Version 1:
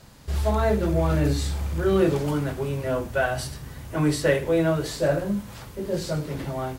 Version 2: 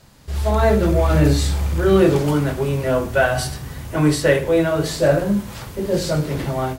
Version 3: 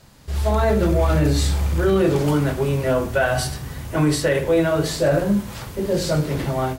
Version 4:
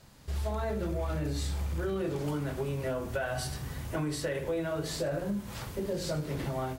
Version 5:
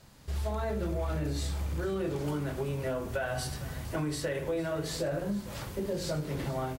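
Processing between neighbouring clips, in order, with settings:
hum removal 53.83 Hz, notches 32; automatic gain control gain up to 8 dB
brickwall limiter −9.5 dBFS, peak gain reduction 7 dB
downward compressor 4 to 1, threshold −24 dBFS, peak gain reduction 9 dB; level −6.5 dB
single-tap delay 455 ms −17.5 dB

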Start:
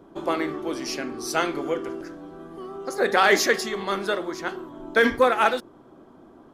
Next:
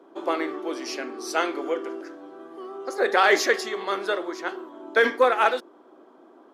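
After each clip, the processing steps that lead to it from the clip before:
high-pass filter 300 Hz 24 dB per octave
high-shelf EQ 7,200 Hz −8.5 dB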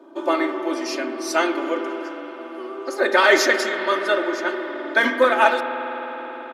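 comb filter 3.3 ms, depth 87%
convolution reverb RT60 5.2 s, pre-delay 52 ms, DRR 7 dB
level +2 dB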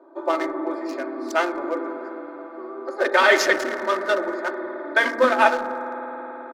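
adaptive Wiener filter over 15 samples
multiband delay without the direct sound highs, lows 180 ms, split 310 Hz

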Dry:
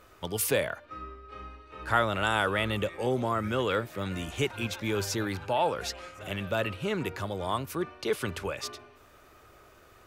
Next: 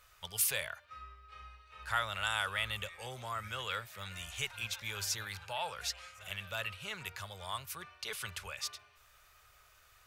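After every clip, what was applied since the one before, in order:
guitar amp tone stack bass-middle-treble 10-0-10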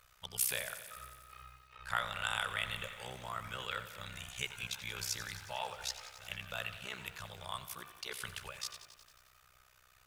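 amplitude modulation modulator 63 Hz, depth 85%
feedback echo at a low word length 90 ms, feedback 80%, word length 10 bits, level −13 dB
level +1.5 dB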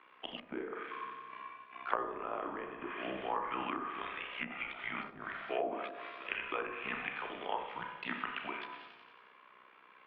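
four-comb reverb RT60 0.64 s, combs from 27 ms, DRR 4 dB
treble cut that deepens with the level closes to 730 Hz, closed at −33.5 dBFS
single-sideband voice off tune −190 Hz 340–3,100 Hz
level +6.5 dB

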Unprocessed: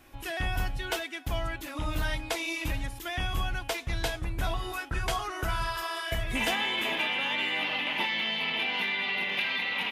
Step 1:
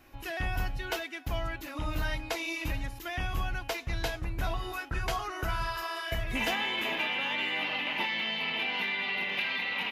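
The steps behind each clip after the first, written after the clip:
parametric band 8,800 Hz −9 dB 0.41 octaves
notch filter 3,400 Hz, Q 13
level −1.5 dB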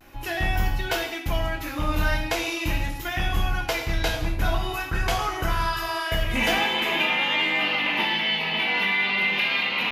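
reverb whose tail is shaped and stops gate 280 ms falling, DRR 1.5 dB
pitch vibrato 0.44 Hz 30 cents
level +6 dB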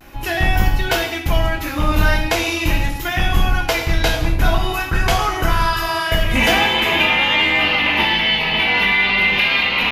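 sub-octave generator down 2 octaves, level −4 dB
level +7.5 dB

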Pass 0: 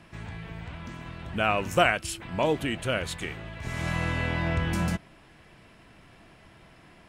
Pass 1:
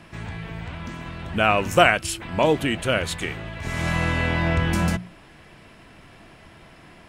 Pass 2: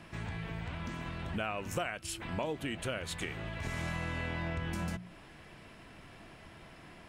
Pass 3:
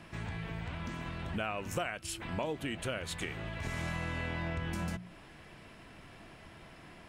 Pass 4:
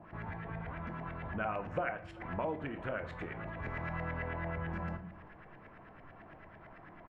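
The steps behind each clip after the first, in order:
mains-hum notches 60/120/180 Hz; level +6 dB
downward compressor 5 to 1, threshold −29 dBFS, peak gain reduction 17 dB; level −5 dB
no processing that can be heard
auto-filter low-pass saw up 9 Hz 670–2,000 Hz; single-tap delay 389 ms −23.5 dB; on a send at −7.5 dB: convolution reverb RT60 0.55 s, pre-delay 6 ms; on the sum: level −3.5 dB

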